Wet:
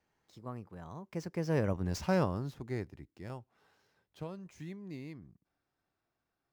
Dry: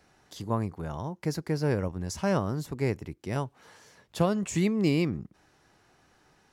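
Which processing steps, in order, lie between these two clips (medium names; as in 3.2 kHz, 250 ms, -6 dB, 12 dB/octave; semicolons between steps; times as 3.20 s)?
median filter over 5 samples; Doppler pass-by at 1.88 s, 30 m/s, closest 8.9 m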